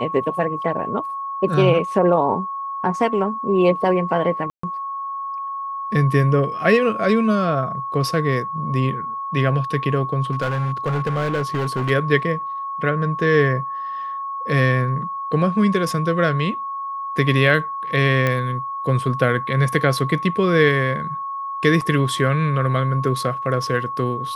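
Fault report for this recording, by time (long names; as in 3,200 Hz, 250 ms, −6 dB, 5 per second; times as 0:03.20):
whistle 1,100 Hz −25 dBFS
0:04.50–0:04.63: drop-out 134 ms
0:10.31–0:11.91: clipping −17.5 dBFS
0:18.27: click −8 dBFS
0:21.81–0:21.82: drop-out 5.5 ms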